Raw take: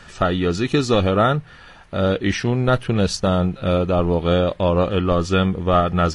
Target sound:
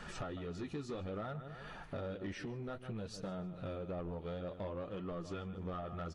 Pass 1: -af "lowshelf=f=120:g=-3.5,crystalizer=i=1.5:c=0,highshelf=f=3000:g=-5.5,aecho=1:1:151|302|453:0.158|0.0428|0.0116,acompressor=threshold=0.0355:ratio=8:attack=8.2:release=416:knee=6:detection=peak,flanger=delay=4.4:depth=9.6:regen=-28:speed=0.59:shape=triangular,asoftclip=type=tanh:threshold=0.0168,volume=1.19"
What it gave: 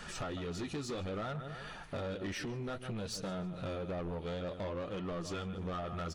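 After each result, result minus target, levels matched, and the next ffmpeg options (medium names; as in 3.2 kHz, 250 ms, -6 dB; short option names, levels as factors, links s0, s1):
8 kHz band +6.5 dB; compression: peak gain reduction -4.5 dB
-af "lowshelf=f=120:g=-3.5,crystalizer=i=1.5:c=0,highshelf=f=3000:g=-15,aecho=1:1:151|302|453:0.158|0.0428|0.0116,acompressor=threshold=0.0355:ratio=8:attack=8.2:release=416:knee=6:detection=peak,flanger=delay=4.4:depth=9.6:regen=-28:speed=0.59:shape=triangular,asoftclip=type=tanh:threshold=0.0168,volume=1.19"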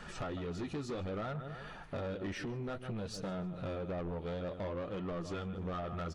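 compression: peak gain reduction -5 dB
-af "lowshelf=f=120:g=-3.5,crystalizer=i=1.5:c=0,highshelf=f=3000:g=-15,aecho=1:1:151|302|453:0.158|0.0428|0.0116,acompressor=threshold=0.0178:ratio=8:attack=8.2:release=416:knee=6:detection=peak,flanger=delay=4.4:depth=9.6:regen=-28:speed=0.59:shape=triangular,asoftclip=type=tanh:threshold=0.0168,volume=1.19"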